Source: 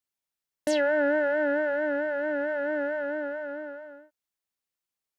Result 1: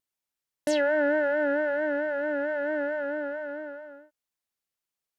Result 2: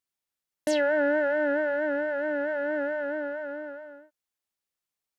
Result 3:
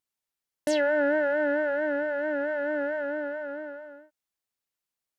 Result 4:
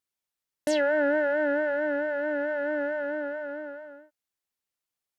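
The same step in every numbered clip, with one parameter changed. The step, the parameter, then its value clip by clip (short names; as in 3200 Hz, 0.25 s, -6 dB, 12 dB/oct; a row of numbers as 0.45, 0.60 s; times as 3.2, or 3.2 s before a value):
vibrato, rate: 1.2, 7.7, 2.8, 4.3 Hz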